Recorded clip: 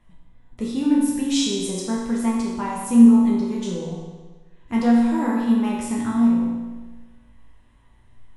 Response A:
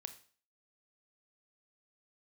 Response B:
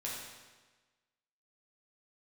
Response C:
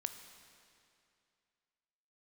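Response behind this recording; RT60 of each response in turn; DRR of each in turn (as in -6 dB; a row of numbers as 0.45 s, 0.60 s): B; 0.45 s, 1.3 s, 2.5 s; 9.0 dB, -5.5 dB, 8.0 dB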